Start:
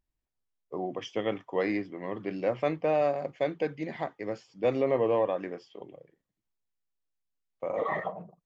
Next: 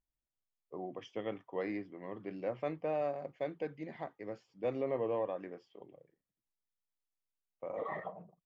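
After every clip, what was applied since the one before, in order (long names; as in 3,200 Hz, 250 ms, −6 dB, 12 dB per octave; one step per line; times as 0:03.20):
high-shelf EQ 3,300 Hz −7.5 dB
level −8.5 dB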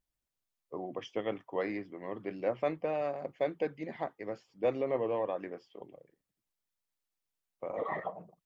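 harmonic and percussive parts rebalanced harmonic −6 dB
level +6.5 dB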